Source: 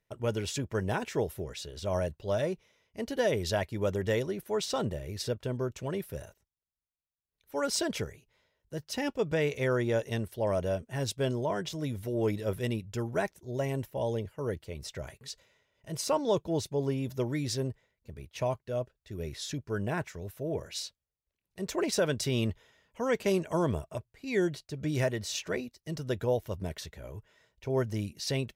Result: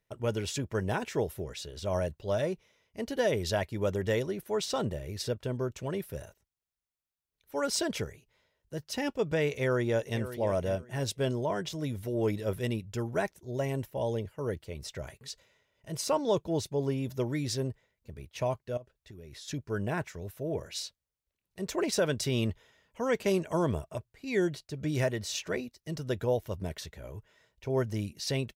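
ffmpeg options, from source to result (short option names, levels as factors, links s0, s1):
-filter_complex "[0:a]asplit=2[s0][s1];[s1]afade=t=in:st=9.52:d=0.01,afade=t=out:st=10.21:d=0.01,aecho=0:1:540|1080:0.237137|0.0474275[s2];[s0][s2]amix=inputs=2:normalize=0,asettb=1/sr,asplit=3[s3][s4][s5];[s3]atrim=end=18.774[s6];[s4]atrim=start=18.77:end=19.48,asetpts=PTS-STARTPTS,afade=t=in:d=0.004:c=qsin,afade=t=out:st=0.706:d=0.004:c=qsin,acompressor=threshold=0.00708:ratio=16:attack=3.2:release=140:knee=1:detection=peak[s7];[s5]atrim=start=19.476[s8];[s6][s7]acrossfade=d=0.004:c1=hsin:c2=qsin[s9];[s9][s8]acrossfade=d=0.004:c1=qsin:c2=hsin"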